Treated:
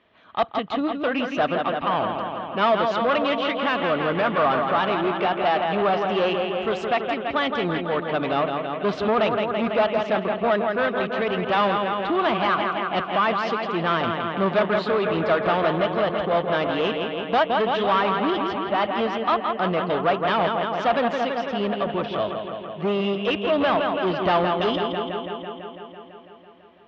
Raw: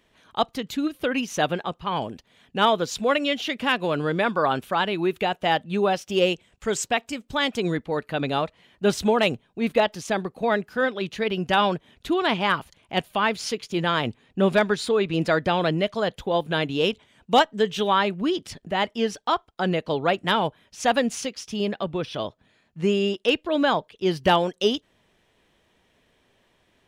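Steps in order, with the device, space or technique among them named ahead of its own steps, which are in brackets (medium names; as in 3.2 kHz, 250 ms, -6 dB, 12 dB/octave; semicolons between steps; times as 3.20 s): analogue delay pedal into a guitar amplifier (bucket-brigade echo 166 ms, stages 4096, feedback 74%, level -7.5 dB; valve stage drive 21 dB, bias 0.35; cabinet simulation 76–3700 Hz, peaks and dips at 140 Hz -6 dB, 660 Hz +6 dB, 1.2 kHz +7 dB); trim +2.5 dB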